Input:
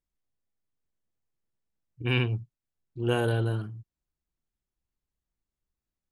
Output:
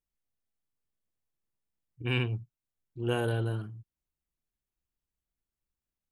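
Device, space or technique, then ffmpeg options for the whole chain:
exciter from parts: -filter_complex "[0:a]asplit=2[link_01][link_02];[link_02]highpass=frequency=2800:width=0.5412,highpass=frequency=2800:width=1.3066,asoftclip=type=tanh:threshold=-30.5dB,highpass=4200,volume=-10dB[link_03];[link_01][link_03]amix=inputs=2:normalize=0,volume=-3.5dB"

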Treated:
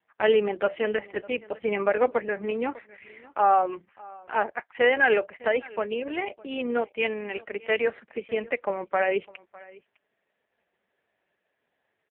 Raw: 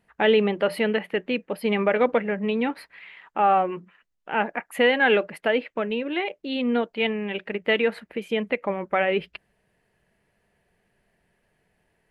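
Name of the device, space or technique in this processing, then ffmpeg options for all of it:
satellite phone: -af "highpass=350,lowpass=3100,aecho=1:1:605:0.0794" -ar 8000 -c:a libopencore_amrnb -b:a 4750

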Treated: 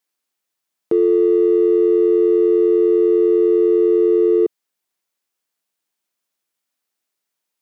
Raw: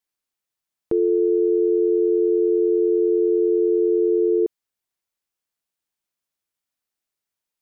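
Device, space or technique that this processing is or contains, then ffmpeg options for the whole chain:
parallel distortion: -filter_complex "[0:a]asplit=2[link_01][link_02];[link_02]asoftclip=type=hard:threshold=-26.5dB,volume=-13dB[link_03];[link_01][link_03]amix=inputs=2:normalize=0,highpass=170,volume=4dB"

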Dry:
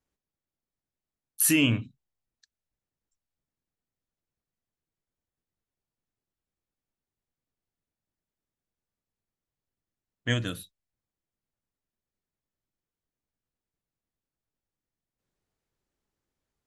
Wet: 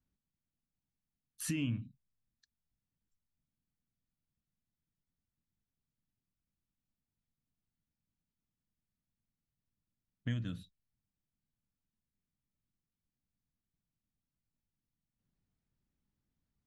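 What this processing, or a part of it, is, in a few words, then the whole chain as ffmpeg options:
jukebox: -af "lowpass=6000,lowshelf=frequency=300:width_type=q:width=1.5:gain=10,acompressor=threshold=-29dB:ratio=3,volume=-7.5dB"

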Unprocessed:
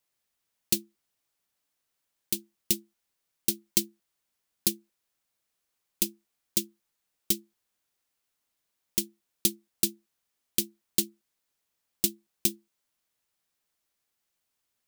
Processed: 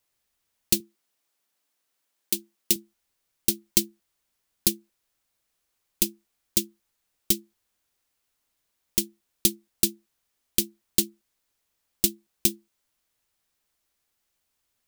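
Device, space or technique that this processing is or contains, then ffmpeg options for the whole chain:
low shelf boost with a cut just above: -filter_complex "[0:a]lowshelf=frequency=110:gain=7.5,equalizer=frequency=160:width_type=o:width=0.61:gain=-3.5,asettb=1/sr,asplit=3[link_01][link_02][link_03];[link_01]atrim=end=0.804[link_04];[link_02]atrim=start=0.8:end=2.76,asetpts=PTS-STARTPTS,afade=type=in:duration=0.004:curve=qsin,afade=type=out:start_time=1.956:duration=0.004:curve=qsin,highpass=200[link_05];[link_03]atrim=start=2.756[link_06];[link_04][link_05]acrossfade=duration=0.004:curve1=hsin:curve2=qsin[link_07];[link_07][link_06]acrossfade=duration=0.004:curve1=qsin:curve2=hsin,volume=3.5dB"

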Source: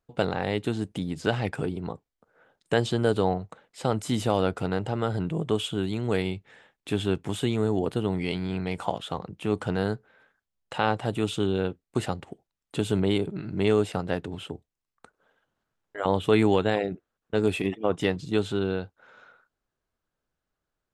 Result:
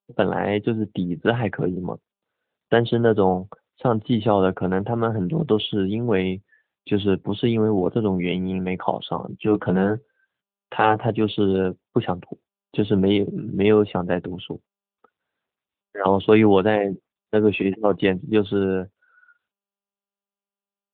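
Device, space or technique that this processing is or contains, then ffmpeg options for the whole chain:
mobile call with aggressive noise cancelling: -filter_complex "[0:a]asettb=1/sr,asplit=3[link_01][link_02][link_03];[link_01]atrim=end=9.154[link_04];[link_02]atrim=start=9.15:end=11.1,asetpts=PTS-STARTPTS,afade=type=in:duration=0.004:curve=qsin,afade=type=out:start_time=1.946:duration=0.004:curve=qsin,asplit=2[link_05][link_06];[link_06]adelay=16,volume=-6dB[link_07];[link_05][link_07]amix=inputs=2:normalize=0,atrim=end_sample=85995[link_08];[link_03]atrim=start=11.096[link_09];[link_04][link_08]acrossfade=duration=0.004:curve1=hsin:curve2=qsin[link_10];[link_10][link_09]acrossfade=duration=0.004:curve1=qsin:curve2=hsin,highpass=100,afftdn=noise_reduction=28:noise_floor=-41,volume=6.5dB" -ar 8000 -c:a libopencore_amrnb -b:a 10200

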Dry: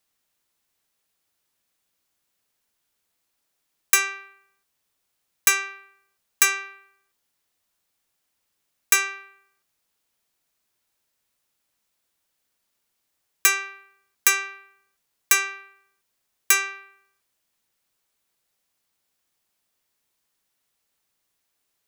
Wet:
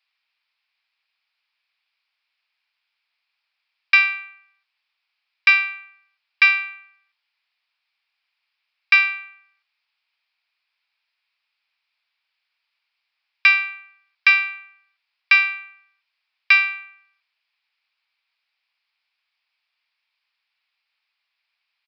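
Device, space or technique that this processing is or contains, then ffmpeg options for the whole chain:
musical greeting card: -af "aresample=11025,aresample=44100,highpass=frequency=830:width=0.5412,highpass=frequency=830:width=1.3066,equalizer=frequency=2400:width_type=o:width=0.44:gain=10.5,highshelf=frequency=5600:gain=7.5"

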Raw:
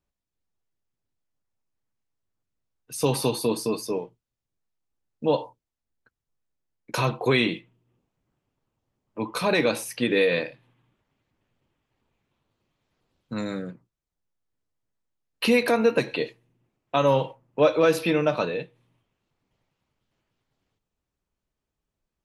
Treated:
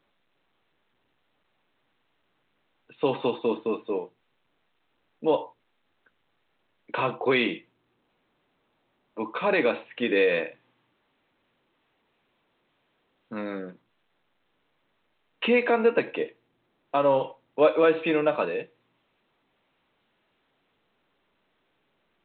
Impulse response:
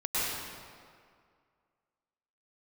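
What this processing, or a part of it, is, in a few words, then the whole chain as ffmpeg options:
telephone: -filter_complex "[0:a]asettb=1/sr,asplit=3[link_01][link_02][link_03];[link_01]atrim=end=16.104[link_04];[link_02]atrim=start=16.1:end=17.21,asetpts=PTS-STARTPTS,afade=type=in:duration=0.004:curve=qsin,afade=type=out:start_time=1.106:duration=0.004:curve=qsin,highshelf=frequency=2500:gain=-8.5[link_05];[link_03]atrim=start=17.206[link_06];[link_04][link_05]acrossfade=duration=0.004:curve1=hsin:curve2=qsin[link_07];[link_07][link_06]acrossfade=duration=0.004:curve1=qsin:curve2=hsin,highpass=260,lowpass=3500" -ar 8000 -c:a pcm_alaw

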